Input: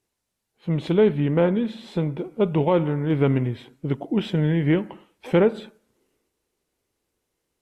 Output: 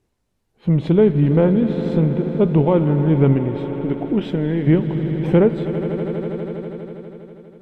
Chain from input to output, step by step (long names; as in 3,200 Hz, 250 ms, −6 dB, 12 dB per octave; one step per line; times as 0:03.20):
spectral tilt −2.5 dB per octave
echo that builds up and dies away 81 ms, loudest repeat 5, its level −17 dB
in parallel at +3 dB: downward compressor, threshold −26 dBFS, peak gain reduction 16 dB
0:03.33–0:04.66: on the sum: parametric band 130 Hz −7 dB → −14 dB 0.87 octaves
level −2 dB